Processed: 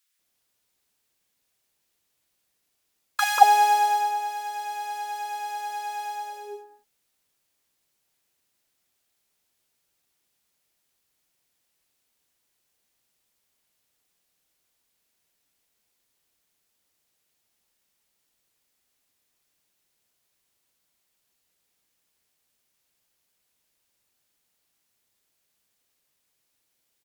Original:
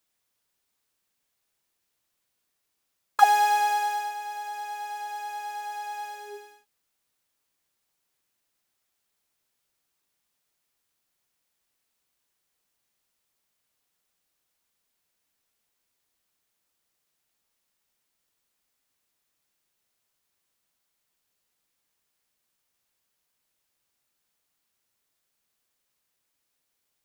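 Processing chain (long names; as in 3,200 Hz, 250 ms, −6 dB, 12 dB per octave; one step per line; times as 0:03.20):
harmonic generator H 7 −34 dB, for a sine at −4 dBFS
multiband delay without the direct sound highs, lows 190 ms, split 1,200 Hz
level +5 dB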